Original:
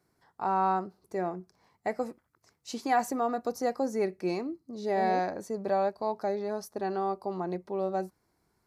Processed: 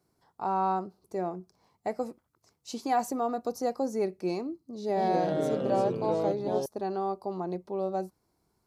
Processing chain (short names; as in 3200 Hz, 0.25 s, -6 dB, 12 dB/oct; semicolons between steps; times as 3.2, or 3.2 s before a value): bell 1800 Hz -8 dB 0.77 oct; 4.58–6.66 echoes that change speed 0.18 s, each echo -3 st, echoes 3